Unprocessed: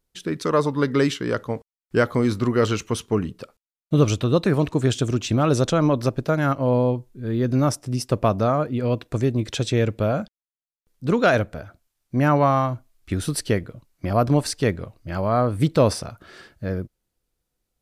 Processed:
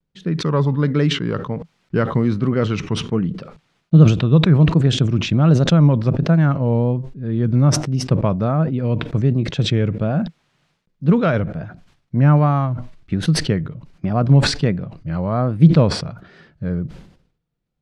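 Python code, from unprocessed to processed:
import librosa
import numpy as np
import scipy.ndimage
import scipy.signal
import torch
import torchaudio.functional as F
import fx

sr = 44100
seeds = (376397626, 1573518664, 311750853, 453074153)

y = scipy.signal.sosfilt(scipy.signal.butter(2, 3500.0, 'lowpass', fs=sr, output='sos'), x)
y = fx.peak_eq(y, sr, hz=160.0, db=14.5, octaves=0.77)
y = fx.vibrato(y, sr, rate_hz=1.3, depth_cents=96.0)
y = fx.sustainer(y, sr, db_per_s=92.0)
y = F.gain(torch.from_numpy(y), -2.5).numpy()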